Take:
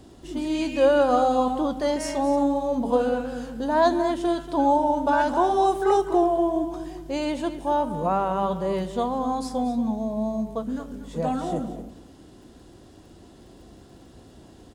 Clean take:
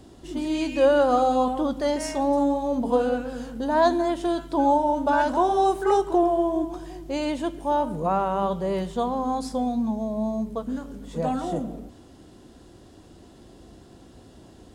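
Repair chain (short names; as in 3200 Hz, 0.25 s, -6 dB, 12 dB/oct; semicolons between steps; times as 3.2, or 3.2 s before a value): de-click; inverse comb 0.234 s -13 dB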